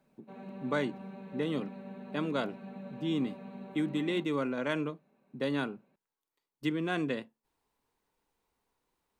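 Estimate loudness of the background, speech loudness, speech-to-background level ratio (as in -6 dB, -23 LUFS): -46.0 LUFS, -34.5 LUFS, 11.5 dB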